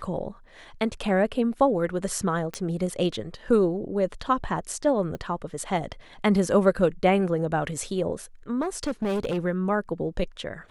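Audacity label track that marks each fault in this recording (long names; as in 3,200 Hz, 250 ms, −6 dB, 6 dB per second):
2.540000	2.540000	click −16 dBFS
5.150000	5.150000	click −23 dBFS
8.610000	9.390000	clipping −23 dBFS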